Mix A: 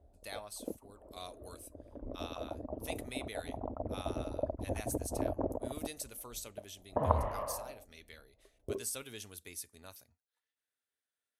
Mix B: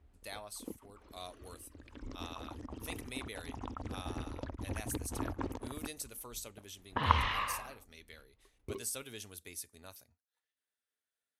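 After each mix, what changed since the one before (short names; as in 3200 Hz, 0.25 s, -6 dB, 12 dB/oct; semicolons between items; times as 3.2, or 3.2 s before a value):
background: remove synth low-pass 630 Hz, resonance Q 6.4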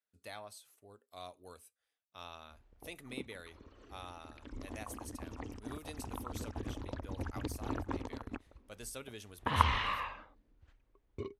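speech: add high shelf 4000 Hz -9.5 dB; background: entry +2.50 s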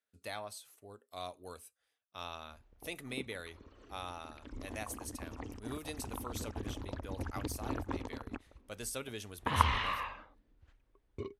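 speech +5.0 dB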